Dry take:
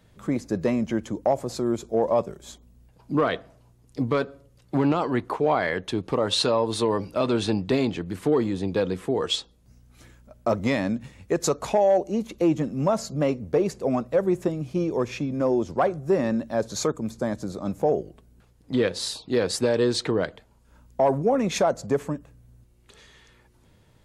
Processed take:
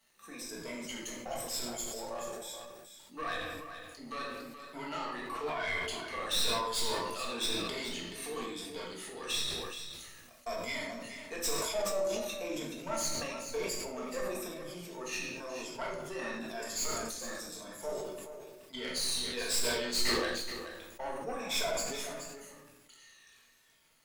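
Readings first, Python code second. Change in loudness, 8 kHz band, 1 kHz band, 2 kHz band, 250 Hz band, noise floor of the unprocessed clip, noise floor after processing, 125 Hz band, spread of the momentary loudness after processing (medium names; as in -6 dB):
-10.5 dB, +0.5 dB, -10.5 dB, -3.5 dB, -18.0 dB, -58 dBFS, -60 dBFS, -20.5 dB, 13 LU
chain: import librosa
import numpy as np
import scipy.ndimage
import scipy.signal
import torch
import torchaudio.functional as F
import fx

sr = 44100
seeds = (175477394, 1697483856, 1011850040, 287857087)

y = fx.spec_ripple(x, sr, per_octave=1.7, drift_hz=-1.0, depth_db=15)
y = fx.high_shelf(y, sr, hz=4100.0, db=-6.5)
y = fx.transient(y, sr, attack_db=3, sustain_db=7)
y = np.diff(y, prepend=0.0)
y = fx.cheby_harmonics(y, sr, harmonics=(8,), levels_db=(-20,), full_scale_db=-12.5)
y = 10.0 ** (-27.0 / 20.0) * np.tanh(y / 10.0 ** (-27.0 / 20.0))
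y = fx.dmg_crackle(y, sr, seeds[0], per_s=260.0, level_db=-56.0)
y = y + 10.0 ** (-10.0 / 20.0) * np.pad(y, (int(427 * sr / 1000.0), 0))[:len(y)]
y = fx.room_shoebox(y, sr, seeds[1], volume_m3=240.0, walls='mixed', distance_m=1.6)
y = fx.sustainer(y, sr, db_per_s=31.0)
y = y * librosa.db_to_amplitude(-3.0)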